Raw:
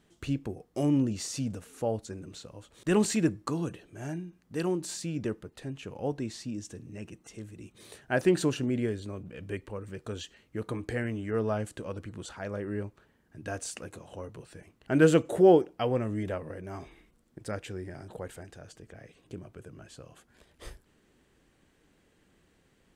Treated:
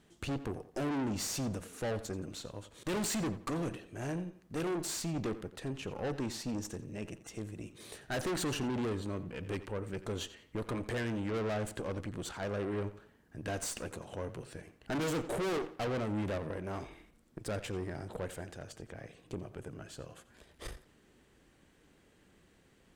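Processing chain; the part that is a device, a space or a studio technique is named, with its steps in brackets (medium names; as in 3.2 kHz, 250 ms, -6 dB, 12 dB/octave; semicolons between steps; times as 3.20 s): rockabilly slapback (valve stage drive 37 dB, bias 0.7; tape echo 87 ms, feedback 35%, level -13 dB, low-pass 5.3 kHz); trim +5 dB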